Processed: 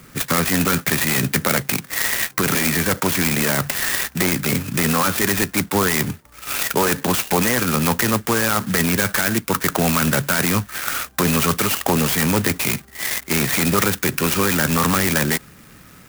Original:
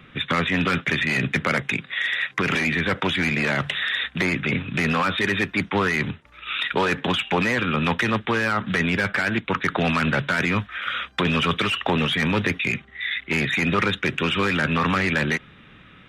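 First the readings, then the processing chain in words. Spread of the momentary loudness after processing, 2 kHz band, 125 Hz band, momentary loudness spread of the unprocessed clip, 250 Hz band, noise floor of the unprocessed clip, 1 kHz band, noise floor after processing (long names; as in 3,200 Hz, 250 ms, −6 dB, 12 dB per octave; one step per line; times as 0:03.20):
4 LU, −0.5 dB, +3.5 dB, 4 LU, +3.5 dB, −49 dBFS, +2.5 dB, −46 dBFS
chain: converter with an unsteady clock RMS 0.081 ms
level +3.5 dB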